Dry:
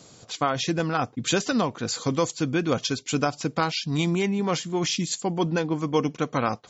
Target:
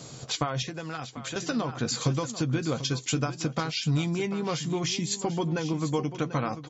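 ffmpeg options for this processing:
ffmpeg -i in.wav -filter_complex "[0:a]acompressor=threshold=-31dB:ratio=12,equalizer=frequency=130:width_type=o:width=0.23:gain=11,asplit=2[link_01][link_02];[link_02]aecho=0:1:742:0.237[link_03];[link_01][link_03]amix=inputs=2:normalize=0,asettb=1/sr,asplit=3[link_04][link_05][link_06];[link_04]atrim=end=0.624[link_07];[link_05]atrim=start=0.62:end=1.36,asetpts=PTS-STARTPTS,afade=type=in:duration=0.004:curve=qsin,afade=type=out:start_time=0.736:duration=0.004:curve=qsin,acrossover=split=460|1900[link_08][link_09][link_10];[link_08]acompressor=threshold=-45dB:ratio=4[link_11];[link_09]acompressor=threshold=-43dB:ratio=4[link_12];[link_10]acompressor=threshold=-45dB:ratio=4[link_13];[link_11][link_12][link_13]amix=inputs=3:normalize=0[link_14];[link_06]atrim=start=1.356[link_15];[link_07][link_14]acrossfade=duration=0.004:curve1=hsin:curve2=qsin[link_16];[link_16][link_15]acrossfade=duration=0.004:curve1=qsin:curve2=hsin,asplit=2[link_17][link_18];[link_18]adelay=13,volume=-10.5dB[link_19];[link_17][link_19]amix=inputs=2:normalize=0,volume=5dB" out.wav

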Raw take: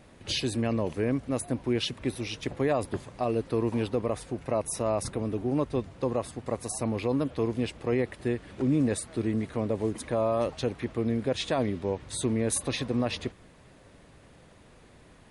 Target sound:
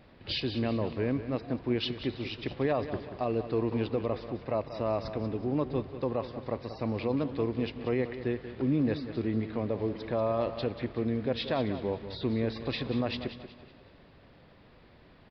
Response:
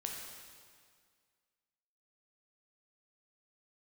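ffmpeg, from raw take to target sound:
-filter_complex "[0:a]aecho=1:1:186|372|558|744:0.266|0.104|0.0405|0.0158,asplit=2[link_01][link_02];[1:a]atrim=start_sample=2205,asetrate=34398,aresample=44100[link_03];[link_02][link_03]afir=irnorm=-1:irlink=0,volume=-16dB[link_04];[link_01][link_04]amix=inputs=2:normalize=0,aresample=11025,aresample=44100,volume=-3.5dB"

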